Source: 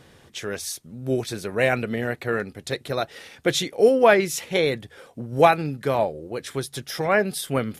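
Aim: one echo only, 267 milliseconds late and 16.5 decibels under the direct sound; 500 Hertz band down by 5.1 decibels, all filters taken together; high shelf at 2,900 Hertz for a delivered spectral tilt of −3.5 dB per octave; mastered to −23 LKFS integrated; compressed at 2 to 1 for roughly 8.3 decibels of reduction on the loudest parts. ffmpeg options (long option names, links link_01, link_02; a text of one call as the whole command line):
ffmpeg -i in.wav -af "equalizer=frequency=500:width_type=o:gain=-6.5,highshelf=frequency=2900:gain=4,acompressor=threshold=-28dB:ratio=2,aecho=1:1:267:0.15,volume=7dB" out.wav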